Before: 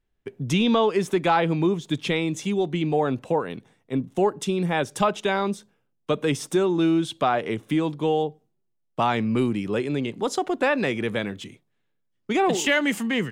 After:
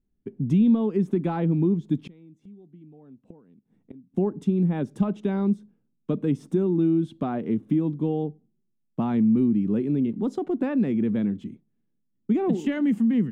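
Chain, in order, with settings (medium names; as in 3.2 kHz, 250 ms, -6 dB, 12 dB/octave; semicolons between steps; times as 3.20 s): FFT filter 120 Hz 0 dB, 220 Hz +10 dB, 550 Hz -9 dB, 5.6 kHz -21 dB; compression 2:1, threshold -20 dBFS, peak gain reduction 6 dB; 2.06–4.14 s: inverted gate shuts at -28 dBFS, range -25 dB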